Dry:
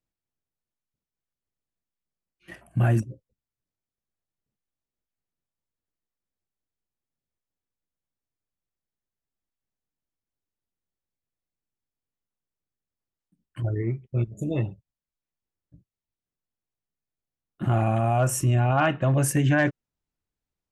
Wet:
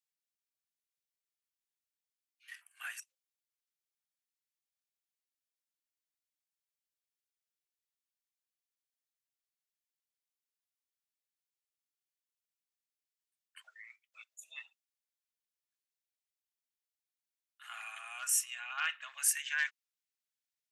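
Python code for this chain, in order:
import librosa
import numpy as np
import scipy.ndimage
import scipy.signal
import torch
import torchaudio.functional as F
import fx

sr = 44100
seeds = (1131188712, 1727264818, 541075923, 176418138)

y = scipy.signal.sosfilt(scipy.signal.bessel(6, 2300.0, 'highpass', norm='mag', fs=sr, output='sos'), x)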